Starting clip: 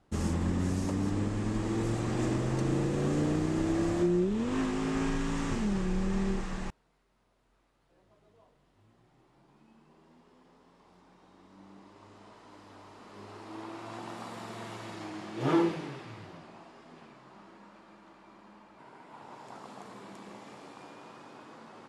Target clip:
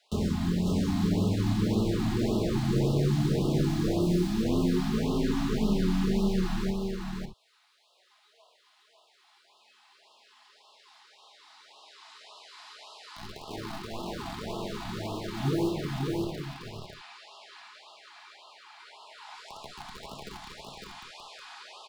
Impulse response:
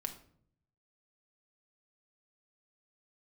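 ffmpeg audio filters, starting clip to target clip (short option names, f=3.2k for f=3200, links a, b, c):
-filter_complex "[0:a]lowshelf=f=270:g=2.5,acrossover=split=620[a][b];[a]acrusher=bits=6:mix=0:aa=0.000001[c];[b]asoftclip=type=tanh:threshold=-39.5dB[d];[c][d]amix=inputs=2:normalize=0,equalizer=f=250:t=o:w=1:g=-7,equalizer=f=1k:t=o:w=1:g=-4,equalizer=f=4k:t=o:w=1:g=9[e];[1:a]atrim=start_sample=2205,atrim=end_sample=3528[f];[e][f]afir=irnorm=-1:irlink=0,acrossover=split=120|1300[g][h][i];[g]acompressor=threshold=-46dB:ratio=4[j];[h]acompressor=threshold=-34dB:ratio=4[k];[i]acompressor=threshold=-56dB:ratio=4[l];[j][k][l]amix=inputs=3:normalize=0,aecho=1:1:551:0.668,afftfilt=real='re*(1-between(b*sr/1024,450*pow(1900/450,0.5+0.5*sin(2*PI*1.8*pts/sr))/1.41,450*pow(1900/450,0.5+0.5*sin(2*PI*1.8*pts/sr))*1.41))':imag='im*(1-between(b*sr/1024,450*pow(1900/450,0.5+0.5*sin(2*PI*1.8*pts/sr))/1.41,450*pow(1900/450,0.5+0.5*sin(2*PI*1.8*pts/sr))*1.41))':win_size=1024:overlap=0.75,volume=9dB"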